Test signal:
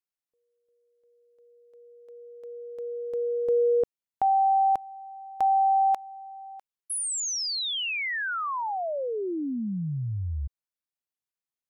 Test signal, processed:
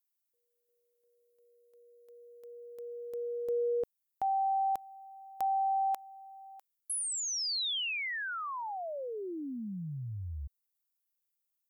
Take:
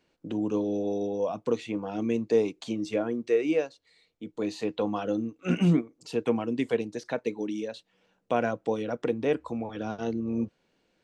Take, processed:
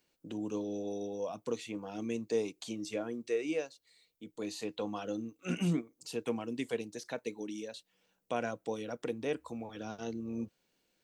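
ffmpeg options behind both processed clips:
ffmpeg -i in.wav -filter_complex "[0:a]acrossover=split=4700[link_01][link_02];[link_02]acompressor=threshold=-42dB:ratio=4:attack=1:release=60[link_03];[link_01][link_03]amix=inputs=2:normalize=0,aemphasis=mode=production:type=75fm,volume=-8dB" out.wav

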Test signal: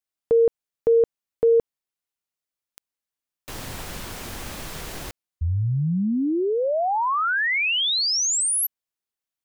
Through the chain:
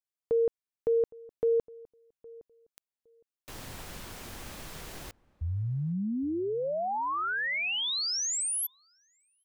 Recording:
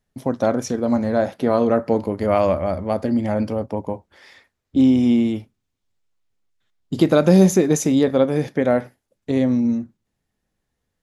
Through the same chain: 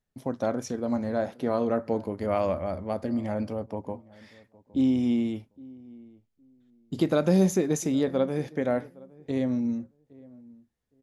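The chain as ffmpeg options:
ffmpeg -i in.wav -filter_complex "[0:a]asplit=2[link_01][link_02];[link_02]adelay=813,lowpass=frequency=1000:poles=1,volume=-22dB,asplit=2[link_03][link_04];[link_04]adelay=813,lowpass=frequency=1000:poles=1,volume=0.19[link_05];[link_01][link_03][link_05]amix=inputs=3:normalize=0,volume=-8.5dB" out.wav

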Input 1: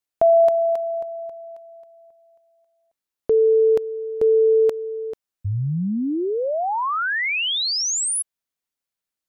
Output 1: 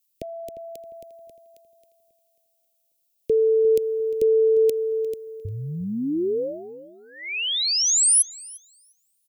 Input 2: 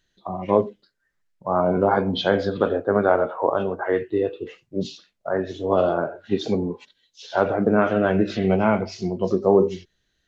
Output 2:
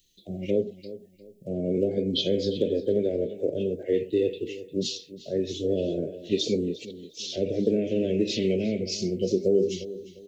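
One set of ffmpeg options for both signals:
ffmpeg -i in.wav -filter_complex "[0:a]acrossover=split=280|600[link_01][link_02][link_03];[link_01]acompressor=threshold=-32dB:ratio=4[link_04];[link_02]acompressor=threshold=-20dB:ratio=4[link_05];[link_03]acompressor=threshold=-30dB:ratio=4[link_06];[link_04][link_05][link_06]amix=inputs=3:normalize=0,asuperstop=centerf=1100:order=8:qfactor=0.6,aemphasis=mode=production:type=75kf,asplit=2[link_07][link_08];[link_08]adelay=352,lowpass=frequency=3900:poles=1,volume=-15dB,asplit=2[link_09][link_10];[link_10]adelay=352,lowpass=frequency=3900:poles=1,volume=0.31,asplit=2[link_11][link_12];[link_12]adelay=352,lowpass=frequency=3900:poles=1,volume=0.31[link_13];[link_07][link_09][link_11][link_13]amix=inputs=4:normalize=0" out.wav

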